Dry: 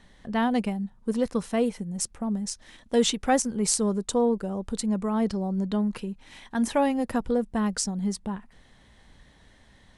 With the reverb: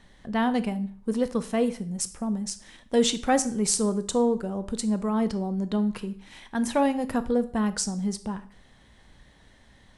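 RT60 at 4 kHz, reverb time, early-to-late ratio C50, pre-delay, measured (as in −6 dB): 0.50 s, 0.50 s, 15.5 dB, 12 ms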